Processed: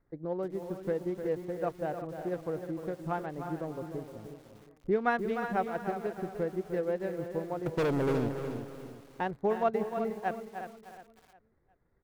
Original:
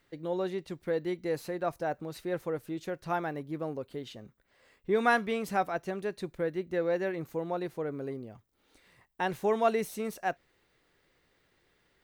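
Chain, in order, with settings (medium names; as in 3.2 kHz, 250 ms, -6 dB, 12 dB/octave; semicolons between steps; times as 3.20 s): local Wiener filter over 15 samples; low-pass 1.8 kHz 6 dB/octave; bass shelf 120 Hz +9 dB; transient shaper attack +4 dB, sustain -6 dB; 7.66–8.29 s: waveshaping leveller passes 5; feedback delay 360 ms, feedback 34%, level -10.5 dB; bit-crushed delay 303 ms, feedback 35%, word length 8-bit, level -8.5 dB; trim -3.5 dB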